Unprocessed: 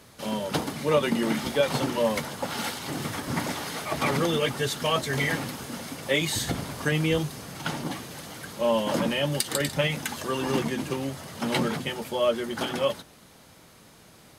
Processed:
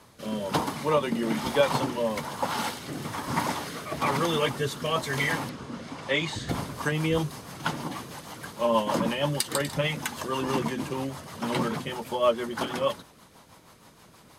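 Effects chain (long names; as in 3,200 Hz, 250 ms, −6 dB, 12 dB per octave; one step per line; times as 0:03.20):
parametric band 1,000 Hz +9.5 dB 0.59 octaves
rotating-speaker cabinet horn 1.1 Hz, later 6.3 Hz, at 0:06.15
0:05.49–0:06.49: high-frequency loss of the air 81 metres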